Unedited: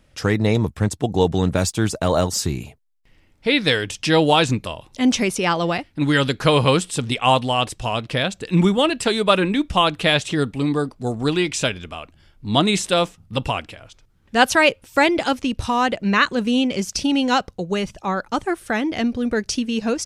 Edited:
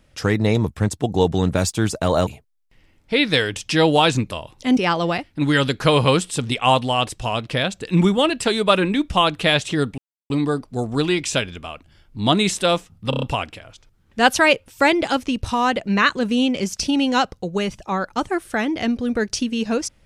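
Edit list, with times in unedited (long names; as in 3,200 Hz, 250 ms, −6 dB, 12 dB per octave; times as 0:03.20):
0:02.27–0:02.61: remove
0:05.11–0:05.37: remove
0:10.58: splice in silence 0.32 s
0:13.38: stutter 0.03 s, 5 plays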